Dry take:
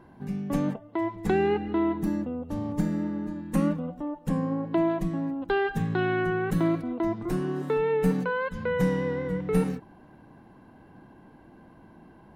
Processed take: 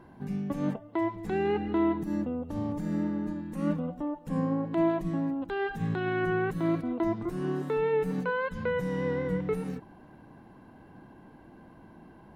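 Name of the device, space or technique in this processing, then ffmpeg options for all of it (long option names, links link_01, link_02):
de-esser from a sidechain: -filter_complex "[0:a]asplit=2[link_01][link_02];[link_02]highpass=frequency=4300:width=0.5412,highpass=frequency=4300:width=1.3066,apad=whole_len=545006[link_03];[link_01][link_03]sidechaincompress=threshold=-59dB:ratio=3:attack=1.6:release=61"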